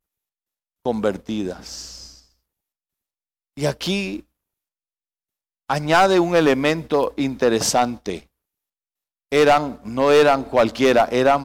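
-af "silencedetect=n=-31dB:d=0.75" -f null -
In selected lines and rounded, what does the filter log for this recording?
silence_start: 0.00
silence_end: 0.86 | silence_duration: 0.86
silence_start: 2.05
silence_end: 3.57 | silence_duration: 1.52
silence_start: 4.20
silence_end: 5.70 | silence_duration: 1.50
silence_start: 8.19
silence_end: 9.32 | silence_duration: 1.13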